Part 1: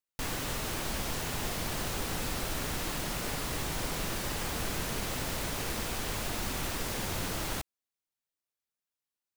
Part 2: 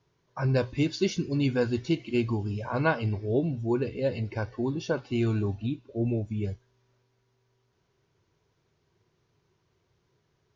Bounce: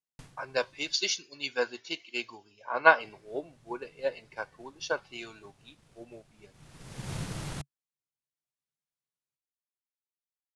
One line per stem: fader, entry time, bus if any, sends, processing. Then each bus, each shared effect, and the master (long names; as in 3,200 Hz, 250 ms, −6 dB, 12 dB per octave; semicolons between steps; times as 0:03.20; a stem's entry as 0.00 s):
−6.0 dB, 0.00 s, muted 0:00.93–0:03.00, no send, Butterworth low-pass 11,000 Hz 48 dB per octave; parametric band 140 Hz +15 dB 0.74 octaves; automatic ducking −24 dB, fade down 0.30 s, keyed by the second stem
−0.5 dB, 0.00 s, no send, high-pass filter 740 Hz 12 dB per octave; multiband upward and downward expander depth 100%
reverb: not used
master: transient designer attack +2 dB, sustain −3 dB